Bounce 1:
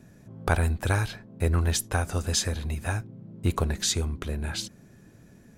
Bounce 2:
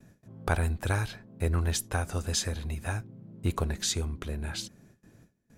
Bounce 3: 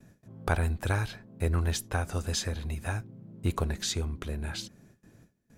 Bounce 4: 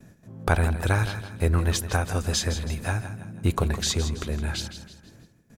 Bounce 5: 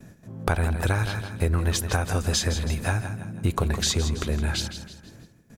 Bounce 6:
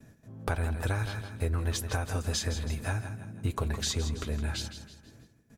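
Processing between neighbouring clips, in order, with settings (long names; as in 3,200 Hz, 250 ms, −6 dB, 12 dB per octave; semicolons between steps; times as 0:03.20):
noise gate with hold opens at −43 dBFS; level −3.5 dB
dynamic equaliser 9,400 Hz, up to −5 dB, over −46 dBFS, Q 0.78
repeating echo 163 ms, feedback 42%, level −11 dB; level +5.5 dB
downward compressor, threshold −23 dBFS, peak gain reduction 8 dB; level +3.5 dB
notch comb filter 180 Hz; level −6 dB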